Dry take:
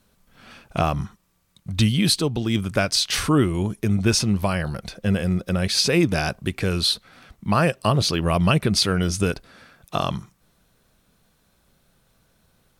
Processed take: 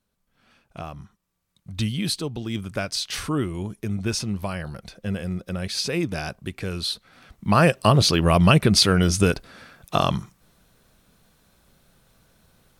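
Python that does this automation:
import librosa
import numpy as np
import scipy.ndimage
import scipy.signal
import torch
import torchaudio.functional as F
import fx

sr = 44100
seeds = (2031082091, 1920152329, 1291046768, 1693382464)

y = fx.gain(x, sr, db=fx.line((1.01, -14.0), (1.83, -6.5), (6.88, -6.5), (7.65, 3.0)))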